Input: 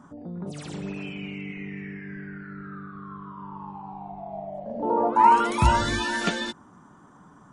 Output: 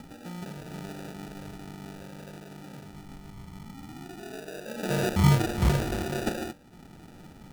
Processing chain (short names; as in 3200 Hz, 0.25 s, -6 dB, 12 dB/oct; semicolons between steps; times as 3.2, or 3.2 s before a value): upward compressor, threshold -35 dBFS; de-hum 97.44 Hz, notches 14; sample-and-hold 41×; gain -3.5 dB